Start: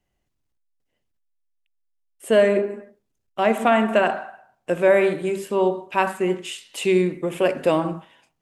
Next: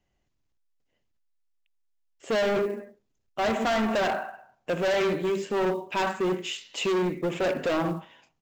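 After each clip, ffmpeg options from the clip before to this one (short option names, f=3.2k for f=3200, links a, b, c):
-af "aresample=16000,asoftclip=type=hard:threshold=-22.5dB,aresample=44100,acrusher=bits=8:mode=log:mix=0:aa=0.000001"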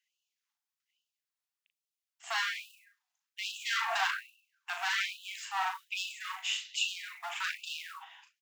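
-filter_complex "[0:a]asplit=2[a][b];[b]adelay=38,volume=-6dB[c];[a][c]amix=inputs=2:normalize=0,afftfilt=real='re*gte(b*sr/1024,650*pow(2600/650,0.5+0.5*sin(2*PI*1.2*pts/sr)))':imag='im*gte(b*sr/1024,650*pow(2600/650,0.5+0.5*sin(2*PI*1.2*pts/sr)))':win_size=1024:overlap=0.75"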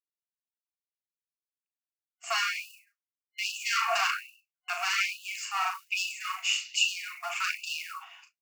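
-af "agate=range=-33dB:threshold=-56dB:ratio=3:detection=peak,superequalizer=9b=0.316:11b=0.398:13b=0.282,volume=7dB"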